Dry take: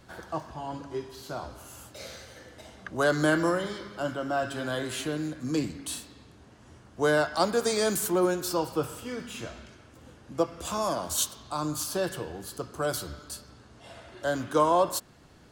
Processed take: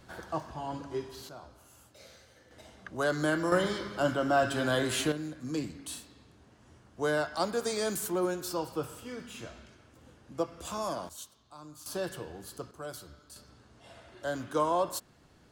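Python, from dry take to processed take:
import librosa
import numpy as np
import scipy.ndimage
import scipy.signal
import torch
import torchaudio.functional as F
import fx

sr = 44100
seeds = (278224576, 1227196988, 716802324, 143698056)

y = fx.gain(x, sr, db=fx.steps((0.0, -1.0), (1.29, -11.5), (2.51, -5.0), (3.52, 3.0), (5.12, -5.5), (11.09, -18.0), (11.86, -5.5), (12.71, -12.0), (13.36, -5.5)))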